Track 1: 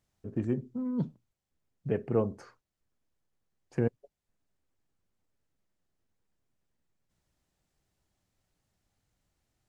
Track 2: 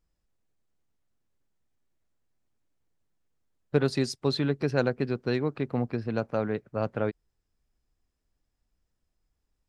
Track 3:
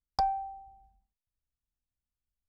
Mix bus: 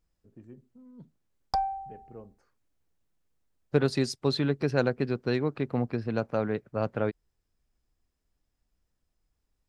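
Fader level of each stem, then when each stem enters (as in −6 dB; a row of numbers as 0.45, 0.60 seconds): −19.0, 0.0, +0.5 decibels; 0.00, 0.00, 1.35 seconds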